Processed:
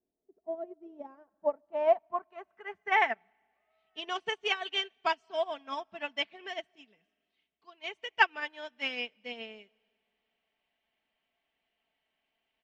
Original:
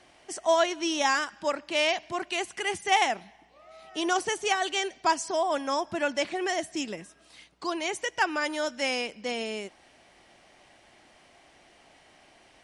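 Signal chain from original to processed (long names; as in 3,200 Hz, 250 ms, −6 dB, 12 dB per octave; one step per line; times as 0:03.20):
comb filter 4.5 ms, depth 52%
low-pass filter sweep 380 Hz → 3,000 Hz, 0:00.62–0:03.81
0:06.67–0:07.84: tuned comb filter 450 Hz, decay 0.6 s, mix 40%
comb and all-pass reverb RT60 2.2 s, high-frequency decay 1×, pre-delay 100 ms, DRR 19.5 dB
expander for the loud parts 2.5 to 1, over −36 dBFS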